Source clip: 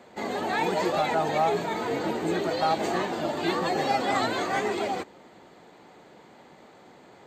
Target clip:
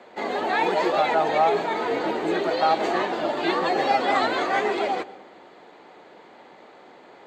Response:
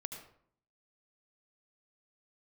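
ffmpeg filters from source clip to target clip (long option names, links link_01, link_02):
-filter_complex "[0:a]acrossover=split=270 4800:gain=0.224 1 0.224[link_01][link_02][link_03];[link_01][link_02][link_03]amix=inputs=3:normalize=0,asplit=2[link_04][link_05];[1:a]atrim=start_sample=2205,asetrate=28224,aresample=44100[link_06];[link_05][link_06]afir=irnorm=-1:irlink=0,volume=-13dB[link_07];[link_04][link_07]amix=inputs=2:normalize=0,volume=3dB"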